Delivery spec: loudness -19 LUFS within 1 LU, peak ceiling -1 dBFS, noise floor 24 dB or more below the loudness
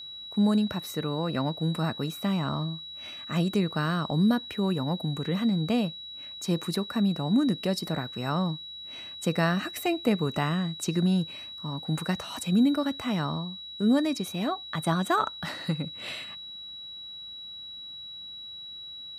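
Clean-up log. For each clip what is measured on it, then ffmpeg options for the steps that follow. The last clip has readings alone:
steady tone 3900 Hz; tone level -39 dBFS; loudness -29.0 LUFS; peak -12.0 dBFS; loudness target -19.0 LUFS
-> -af "bandreject=f=3.9k:w=30"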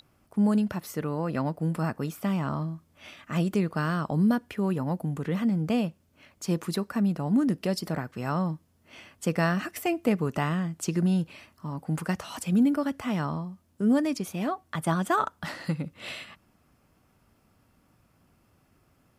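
steady tone none; loudness -28.5 LUFS; peak -12.5 dBFS; loudness target -19.0 LUFS
-> -af "volume=9.5dB"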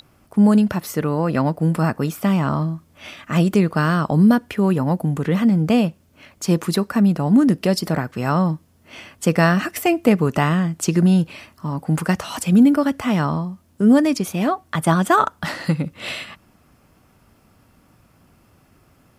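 loudness -19.0 LUFS; peak -3.0 dBFS; noise floor -57 dBFS

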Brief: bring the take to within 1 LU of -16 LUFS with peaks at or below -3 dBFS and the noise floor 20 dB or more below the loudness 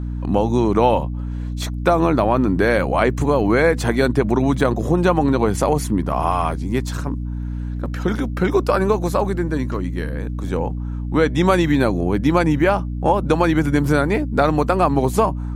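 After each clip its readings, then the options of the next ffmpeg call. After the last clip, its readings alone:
hum 60 Hz; harmonics up to 300 Hz; hum level -23 dBFS; loudness -19.0 LUFS; peak -1.5 dBFS; loudness target -16.0 LUFS
-> -af "bandreject=f=60:t=h:w=4,bandreject=f=120:t=h:w=4,bandreject=f=180:t=h:w=4,bandreject=f=240:t=h:w=4,bandreject=f=300:t=h:w=4"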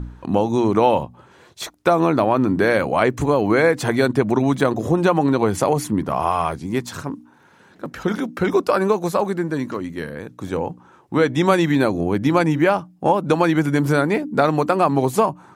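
hum none; loudness -19.5 LUFS; peak -2.0 dBFS; loudness target -16.0 LUFS
-> -af "volume=3.5dB,alimiter=limit=-3dB:level=0:latency=1"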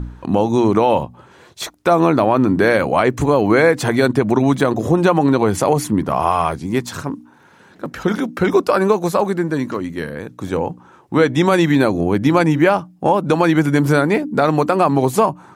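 loudness -16.5 LUFS; peak -3.0 dBFS; noise floor -47 dBFS

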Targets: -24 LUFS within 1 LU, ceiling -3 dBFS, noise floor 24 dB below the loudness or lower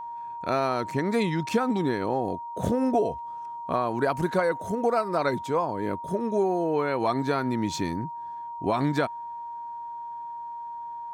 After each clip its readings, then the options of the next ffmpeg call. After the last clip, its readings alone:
steady tone 940 Hz; tone level -34 dBFS; loudness -28.0 LUFS; peak -12.5 dBFS; loudness target -24.0 LUFS
-> -af "bandreject=f=940:w=30"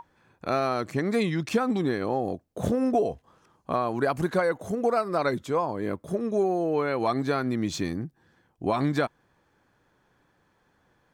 steady tone none; loudness -27.5 LUFS; peak -13.0 dBFS; loudness target -24.0 LUFS
-> -af "volume=3.5dB"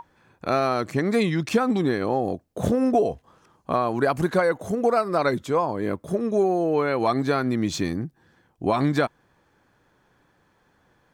loudness -24.0 LUFS; peak -9.5 dBFS; noise floor -65 dBFS

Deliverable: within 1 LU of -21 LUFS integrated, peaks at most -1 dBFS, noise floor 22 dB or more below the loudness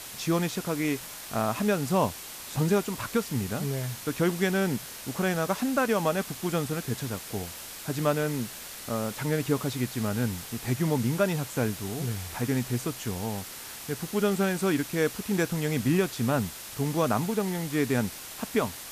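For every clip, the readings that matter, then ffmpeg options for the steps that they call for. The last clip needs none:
noise floor -42 dBFS; noise floor target -51 dBFS; loudness -29.0 LUFS; peak -12.0 dBFS; loudness target -21.0 LUFS
-> -af "afftdn=nr=9:nf=-42"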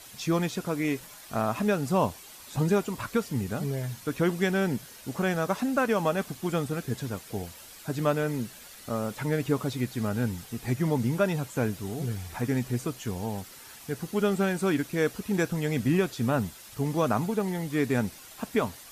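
noise floor -48 dBFS; noise floor target -51 dBFS
-> -af "afftdn=nr=6:nf=-48"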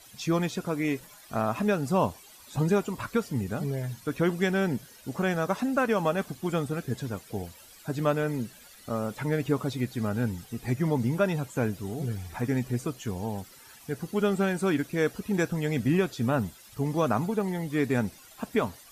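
noise floor -52 dBFS; loudness -29.0 LUFS; peak -13.0 dBFS; loudness target -21.0 LUFS
-> -af "volume=8dB"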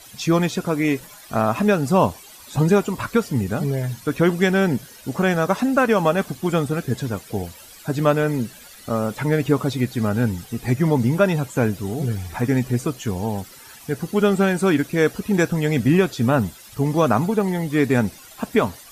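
loudness -21.0 LUFS; peak -5.0 dBFS; noise floor -44 dBFS

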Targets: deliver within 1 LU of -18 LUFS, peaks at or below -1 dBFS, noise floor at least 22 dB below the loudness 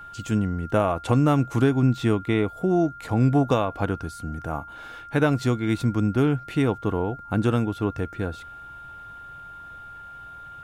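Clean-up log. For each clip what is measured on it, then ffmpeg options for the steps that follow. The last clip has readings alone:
steady tone 1400 Hz; tone level -39 dBFS; loudness -24.0 LUFS; peak -8.5 dBFS; loudness target -18.0 LUFS
-> -af "bandreject=f=1.4k:w=30"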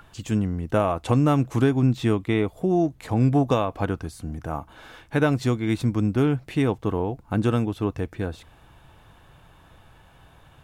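steady tone none; loudness -24.0 LUFS; peak -9.0 dBFS; loudness target -18.0 LUFS
-> -af "volume=6dB"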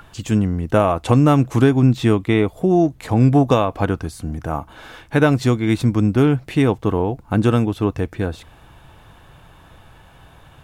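loudness -18.0 LUFS; peak -3.0 dBFS; noise floor -48 dBFS

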